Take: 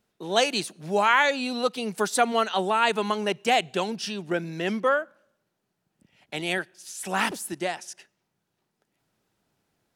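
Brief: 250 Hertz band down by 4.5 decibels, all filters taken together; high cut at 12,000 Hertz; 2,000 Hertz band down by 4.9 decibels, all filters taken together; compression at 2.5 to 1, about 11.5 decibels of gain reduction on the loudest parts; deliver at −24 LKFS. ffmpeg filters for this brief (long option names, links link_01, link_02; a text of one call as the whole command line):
ffmpeg -i in.wav -af "lowpass=12000,equalizer=frequency=250:width_type=o:gain=-6,equalizer=frequency=2000:width_type=o:gain=-6.5,acompressor=threshold=-36dB:ratio=2.5,volume=13dB" out.wav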